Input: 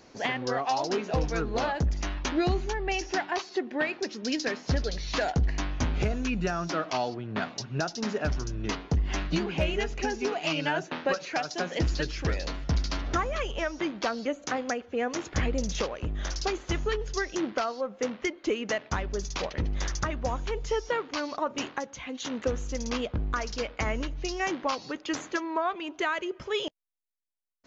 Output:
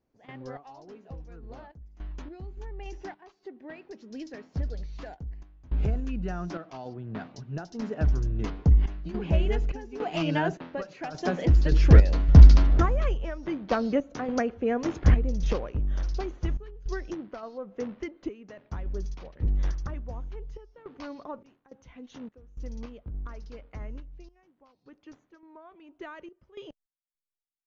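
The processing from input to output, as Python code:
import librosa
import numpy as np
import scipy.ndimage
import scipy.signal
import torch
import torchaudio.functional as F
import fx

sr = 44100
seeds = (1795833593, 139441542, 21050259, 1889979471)

y = fx.doppler_pass(x, sr, speed_mps=10, closest_m=11.0, pass_at_s=12.56)
y = fx.tremolo_random(y, sr, seeds[0], hz=3.5, depth_pct=95)
y = fx.tilt_eq(y, sr, slope=-3.0)
y = y * librosa.db_to_amplitude(8.5)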